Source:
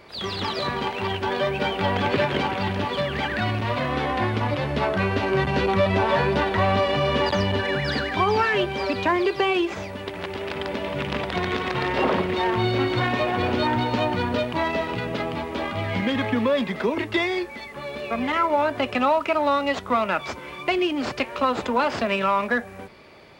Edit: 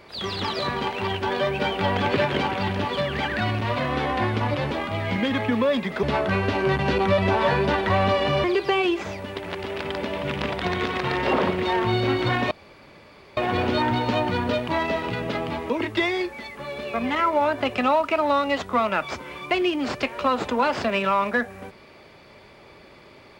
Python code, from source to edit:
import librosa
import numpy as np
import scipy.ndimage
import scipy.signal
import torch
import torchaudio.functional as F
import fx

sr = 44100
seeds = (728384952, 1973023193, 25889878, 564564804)

y = fx.edit(x, sr, fx.cut(start_s=7.12, length_s=2.03),
    fx.insert_room_tone(at_s=13.22, length_s=0.86),
    fx.move(start_s=15.55, length_s=1.32, to_s=4.71), tone=tone)